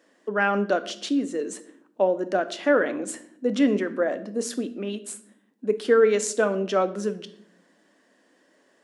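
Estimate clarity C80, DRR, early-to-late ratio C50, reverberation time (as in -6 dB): 18.5 dB, 10.5 dB, 15.5 dB, 0.65 s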